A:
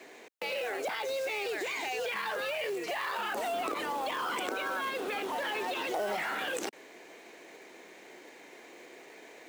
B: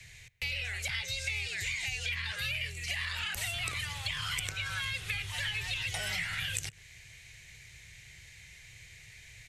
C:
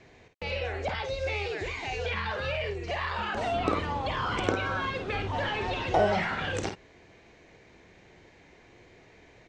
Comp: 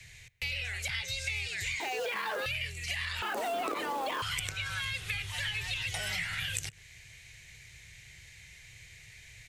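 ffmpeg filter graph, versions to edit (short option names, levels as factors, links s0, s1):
-filter_complex "[0:a]asplit=2[s0][s1];[1:a]asplit=3[s2][s3][s4];[s2]atrim=end=1.802[s5];[s0]atrim=start=1.798:end=2.462[s6];[s3]atrim=start=2.458:end=3.222[s7];[s1]atrim=start=3.218:end=4.222[s8];[s4]atrim=start=4.218[s9];[s5][s6]acrossfade=d=0.004:c1=hsin:c2=hsin[s10];[s10][s7]acrossfade=d=0.004:c1=hsin:c2=hsin[s11];[s11][s8]acrossfade=d=0.004:c1=hsin:c2=hsin[s12];[s12][s9]acrossfade=d=0.004:c1=hsin:c2=hsin"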